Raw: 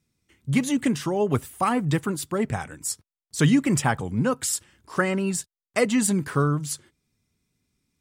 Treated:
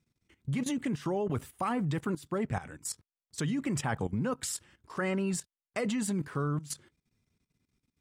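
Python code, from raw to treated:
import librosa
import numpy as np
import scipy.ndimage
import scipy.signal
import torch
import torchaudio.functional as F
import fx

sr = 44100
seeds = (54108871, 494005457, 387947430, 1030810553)

y = fx.level_steps(x, sr, step_db=15)
y = fx.high_shelf(y, sr, hz=5600.0, db=-8.0)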